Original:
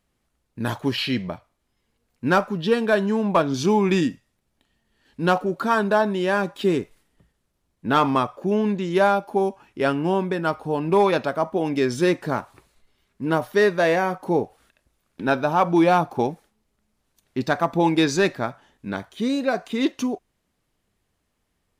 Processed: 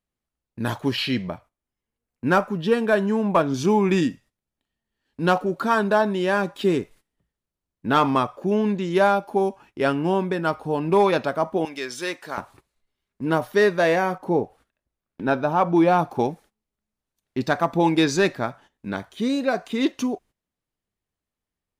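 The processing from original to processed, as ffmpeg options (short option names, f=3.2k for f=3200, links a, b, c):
-filter_complex "[0:a]asettb=1/sr,asplit=3[a][b][c];[a]atrim=end=1.304[d];[b]atrim=start=1.3:end=3.98,asetpts=PTS-STARTPTS,afade=t=in:d=0.004:c=qsin,afade=t=out:st=2.676:d=0.004:c=qsin,equalizer=f=4.2k:w=1.5:g=-5[e];[c]atrim=start=3.976[f];[d][e]acrossfade=d=0.004:c1=hsin:c2=qsin[g];[g][f]acrossfade=d=0.004:c1=qsin:c2=hsin,asettb=1/sr,asplit=3[h][i][j];[h]atrim=end=11.654[k];[i]atrim=start=11.65:end=12.38,asetpts=PTS-STARTPTS,afade=t=in:d=0.004:c=qsin,afade=t=out:st=0.726:d=0.004:c=qsin,highpass=f=1.4k:p=1[l];[j]atrim=start=12.376[m];[k][l]acrossfade=d=0.004:c1=hsin:c2=qsin[n];[n][m]acrossfade=d=0.004:c1=qsin:c2=hsin,asettb=1/sr,asplit=3[o][p][q];[o]atrim=end=14.184[r];[p]atrim=start=14.18:end=15.99,asetpts=PTS-STARTPTS,afade=t=in:d=0.004:c=qsin,afade=t=out:st=1.806:d=0.004:c=qsin,highshelf=f=2.2k:g=-7[s];[q]atrim=start=15.986[t];[r][s]acrossfade=d=0.004:c1=hsin:c2=qsin[u];[u][t]acrossfade=d=0.004:c1=qsin:c2=hsin,agate=range=-14dB:threshold=-47dB:ratio=16:detection=peak"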